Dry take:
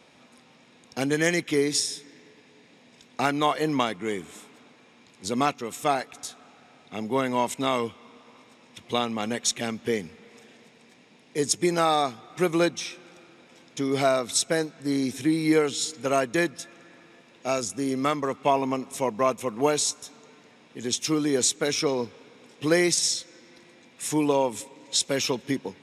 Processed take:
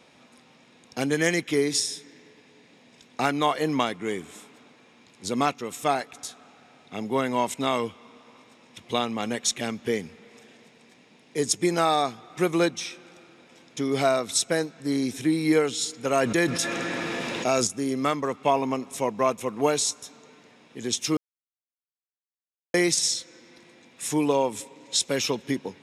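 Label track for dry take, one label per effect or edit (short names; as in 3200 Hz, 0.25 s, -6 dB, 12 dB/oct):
16.160000	17.670000	fast leveller amount 70%
21.170000	22.740000	mute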